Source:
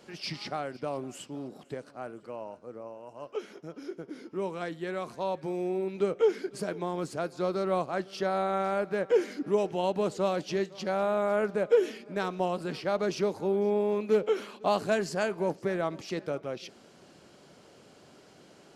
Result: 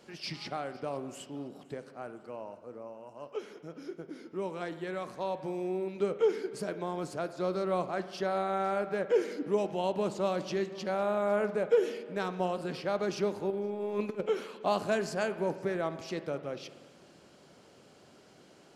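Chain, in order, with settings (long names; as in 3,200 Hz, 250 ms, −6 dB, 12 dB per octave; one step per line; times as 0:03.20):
0:13.50–0:14.21: compressor whose output falls as the input rises −30 dBFS, ratio −0.5
spring reverb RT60 1.5 s, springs 49 ms, chirp 55 ms, DRR 12 dB
level −2.5 dB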